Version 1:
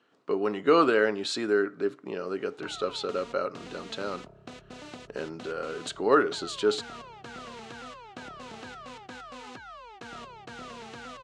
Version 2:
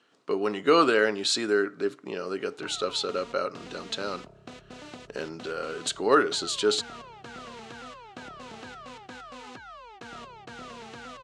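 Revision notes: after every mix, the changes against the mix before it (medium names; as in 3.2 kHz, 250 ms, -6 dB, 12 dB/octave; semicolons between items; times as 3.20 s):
speech: add treble shelf 3 kHz +10 dB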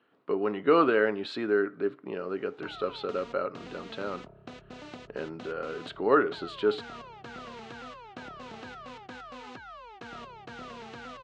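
speech: add distance through air 460 m; background: add distance through air 93 m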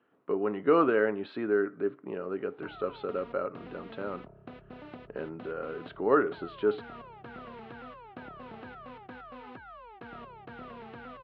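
master: add distance through air 430 m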